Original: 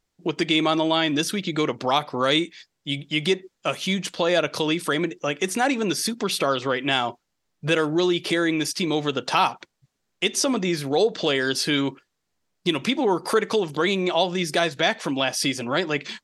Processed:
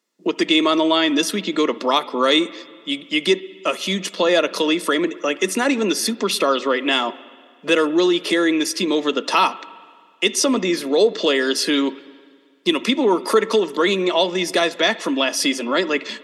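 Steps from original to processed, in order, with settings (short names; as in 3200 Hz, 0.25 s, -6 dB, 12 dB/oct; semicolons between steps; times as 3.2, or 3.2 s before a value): steep high-pass 200 Hz 48 dB/oct; notch comb 780 Hz; on a send: reverb RT60 1.9 s, pre-delay 62 ms, DRR 18 dB; on the sum: gain +5 dB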